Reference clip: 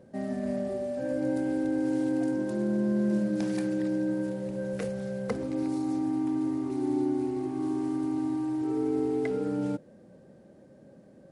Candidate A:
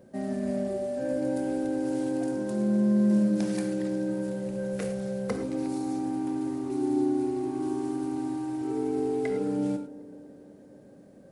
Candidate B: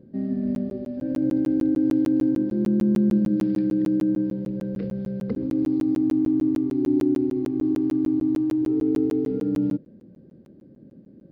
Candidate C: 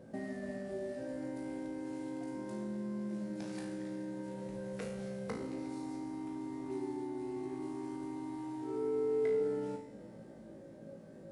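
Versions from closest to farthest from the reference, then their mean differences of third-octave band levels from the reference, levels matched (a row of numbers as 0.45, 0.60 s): A, C, B; 2.0, 4.0, 7.0 dB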